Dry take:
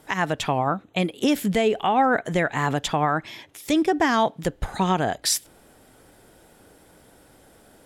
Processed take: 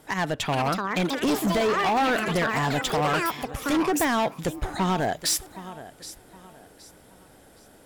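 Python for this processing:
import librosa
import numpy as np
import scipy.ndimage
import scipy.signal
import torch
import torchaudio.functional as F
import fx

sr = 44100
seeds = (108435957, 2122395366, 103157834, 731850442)

y = fx.echo_feedback(x, sr, ms=769, feedback_pct=32, wet_db=-18.0)
y = fx.echo_pitch(y, sr, ms=458, semitones=7, count=2, db_per_echo=-6.0)
y = np.clip(y, -10.0 ** (-19.5 / 20.0), 10.0 ** (-19.5 / 20.0))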